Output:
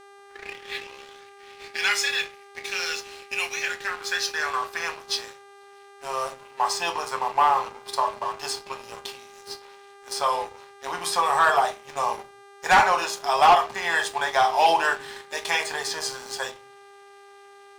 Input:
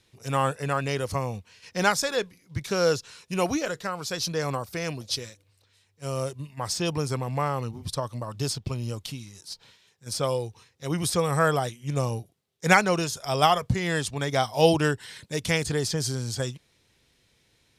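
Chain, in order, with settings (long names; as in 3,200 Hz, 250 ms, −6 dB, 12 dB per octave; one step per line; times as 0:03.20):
turntable start at the beginning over 1.93 s
high-pass filter sweep 2,300 Hz → 900 Hz, 0:03.47–0:05.36
convolution reverb RT60 0.30 s, pre-delay 5 ms, DRR 2.5 dB
hum with harmonics 400 Hz, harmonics 18, −40 dBFS −7 dB per octave
leveller curve on the samples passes 3
high-shelf EQ 5,600 Hz −7.5 dB
level −9 dB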